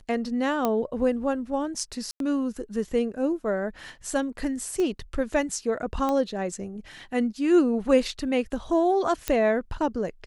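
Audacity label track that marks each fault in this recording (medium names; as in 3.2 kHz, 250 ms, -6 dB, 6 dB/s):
0.650000	0.650000	pop -11 dBFS
2.110000	2.200000	dropout 92 ms
4.800000	4.800000	pop -19 dBFS
6.090000	6.090000	pop -15 dBFS
9.280000	9.280000	pop -9 dBFS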